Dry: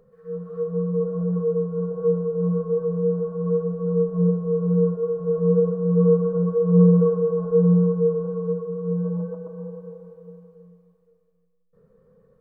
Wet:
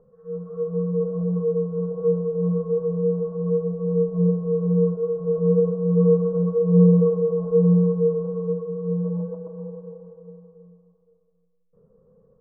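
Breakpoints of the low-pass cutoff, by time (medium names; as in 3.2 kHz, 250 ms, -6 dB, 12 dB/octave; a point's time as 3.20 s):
low-pass 24 dB/octave
1.2 kHz
from 0.91 s 1.1 kHz
from 3.40 s 1 kHz
from 4.28 s 1.1 kHz
from 6.58 s 1 kHz
from 7.47 s 1.1 kHz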